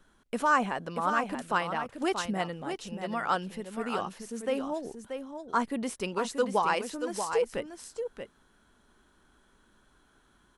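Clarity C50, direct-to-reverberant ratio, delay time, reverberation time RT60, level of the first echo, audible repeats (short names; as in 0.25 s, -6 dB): none, none, 0.632 s, none, -7.5 dB, 1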